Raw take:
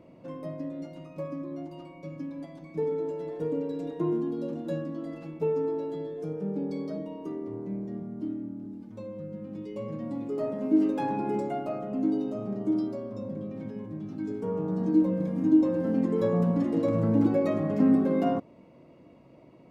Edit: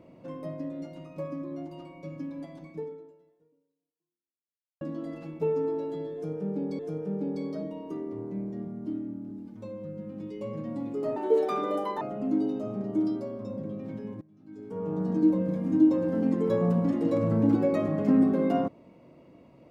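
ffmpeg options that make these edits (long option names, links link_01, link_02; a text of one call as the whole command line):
ffmpeg -i in.wav -filter_complex "[0:a]asplit=6[link_01][link_02][link_03][link_04][link_05][link_06];[link_01]atrim=end=4.81,asetpts=PTS-STARTPTS,afade=type=out:start_time=2.66:duration=2.15:curve=exp[link_07];[link_02]atrim=start=4.81:end=6.792,asetpts=PTS-STARTPTS,afade=type=in:duration=0.004:curve=hsin[link_08];[link_03]atrim=start=6.138:end=10.514[link_09];[link_04]atrim=start=10.51:end=11.73,asetpts=PTS-STARTPTS,asetrate=63063,aresample=44100[link_10];[link_05]atrim=start=11.726:end=13.93,asetpts=PTS-STARTPTS,afade=type=out:start_time=2.2:duration=0.004:curve=hsin:silence=0.0707946[link_11];[link_06]atrim=start=13.93,asetpts=PTS-STARTPTS,afade=type=in:duration=0.73:curve=qua:silence=0.0707946[link_12];[link_07][link_08]concat=n=2:v=0:a=1[link_13];[link_13][link_09]acrossfade=duration=0.004:curve1=hsin:curve2=hsin[link_14];[link_14][link_10]acrossfade=duration=0.004:curve1=hsin:curve2=hsin[link_15];[link_11][link_12]concat=n=2:v=0:a=1[link_16];[link_15][link_16]acrossfade=duration=0.004:curve1=hsin:curve2=hsin" out.wav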